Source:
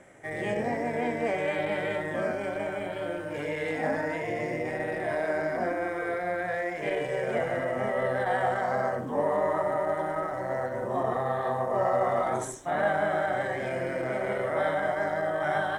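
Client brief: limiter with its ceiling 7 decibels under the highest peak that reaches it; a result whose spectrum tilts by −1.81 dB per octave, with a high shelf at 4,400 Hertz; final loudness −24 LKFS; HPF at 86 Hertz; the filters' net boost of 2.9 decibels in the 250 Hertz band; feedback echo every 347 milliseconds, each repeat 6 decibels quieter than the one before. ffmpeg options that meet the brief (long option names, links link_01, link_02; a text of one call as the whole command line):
ffmpeg -i in.wav -af "highpass=86,equalizer=frequency=250:width_type=o:gain=4,highshelf=frequency=4400:gain=-5.5,alimiter=limit=-21dB:level=0:latency=1,aecho=1:1:347|694|1041|1388|1735|2082:0.501|0.251|0.125|0.0626|0.0313|0.0157,volume=5dB" out.wav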